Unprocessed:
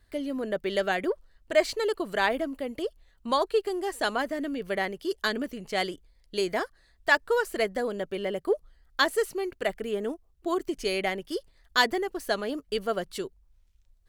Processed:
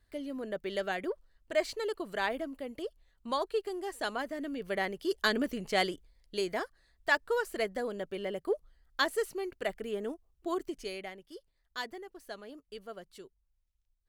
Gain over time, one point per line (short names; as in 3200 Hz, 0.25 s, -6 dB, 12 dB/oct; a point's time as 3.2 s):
4.29 s -7 dB
5.55 s +1.5 dB
6.49 s -5.5 dB
10.61 s -5.5 dB
11.15 s -16 dB